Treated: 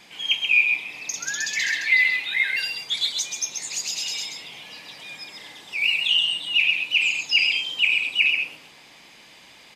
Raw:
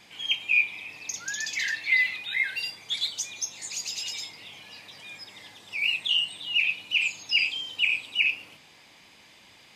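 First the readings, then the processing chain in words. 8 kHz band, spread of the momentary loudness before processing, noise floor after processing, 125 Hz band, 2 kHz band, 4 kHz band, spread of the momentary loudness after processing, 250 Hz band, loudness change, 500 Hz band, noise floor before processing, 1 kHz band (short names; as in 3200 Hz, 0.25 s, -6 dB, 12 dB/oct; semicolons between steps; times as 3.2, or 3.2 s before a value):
+5.0 dB, 19 LU, -49 dBFS, n/a, +5.0 dB, +5.0 dB, 19 LU, +4.5 dB, +5.0 dB, +5.0 dB, -55 dBFS, +5.0 dB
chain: bell 95 Hz -11.5 dB 0.48 oct; on a send: echo 0.132 s -5 dB; on the sum: gain +4 dB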